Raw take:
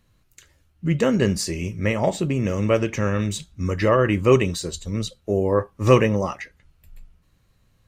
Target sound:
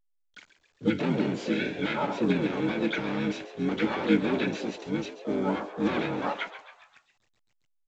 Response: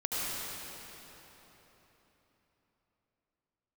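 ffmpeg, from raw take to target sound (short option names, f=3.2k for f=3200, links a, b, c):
-filter_complex "[0:a]lowshelf=f=140:g=-7,alimiter=limit=-11.5dB:level=0:latency=1:release=196,asplit=2[a][b];[b]highpass=f=720:p=1,volume=19dB,asoftclip=type=tanh:threshold=-11.5dB[c];[a][c]amix=inputs=2:normalize=0,lowpass=f=5.1k:p=1,volume=-6dB,asoftclip=type=tanh:threshold=-16dB,acontrast=21,asplit=3[d][e][f];[d]bandpass=f=300:t=q:w=8,volume=0dB[g];[e]bandpass=f=870:t=q:w=8,volume=-6dB[h];[f]bandpass=f=2.24k:t=q:w=8,volume=-9dB[i];[g][h][i]amix=inputs=3:normalize=0,aeval=exprs='val(0)*gte(abs(val(0)),0.00237)':c=same,asplit=4[j][k][l][m];[k]asetrate=29433,aresample=44100,atempo=1.49831,volume=-1dB[n];[l]asetrate=37084,aresample=44100,atempo=1.18921,volume=-14dB[o];[m]asetrate=66075,aresample=44100,atempo=0.66742,volume=-5dB[p];[j][n][o][p]amix=inputs=4:normalize=0,asplit=2[q][r];[r]asplit=5[s][t][u][v][w];[s]adelay=135,afreqshift=110,volume=-13dB[x];[t]adelay=270,afreqshift=220,volume=-18.7dB[y];[u]adelay=405,afreqshift=330,volume=-24.4dB[z];[v]adelay=540,afreqshift=440,volume=-30dB[aa];[w]adelay=675,afreqshift=550,volume=-35.7dB[ab];[x][y][z][aa][ab]amix=inputs=5:normalize=0[ac];[q][ac]amix=inputs=2:normalize=0" -ar 16000 -c:a pcm_alaw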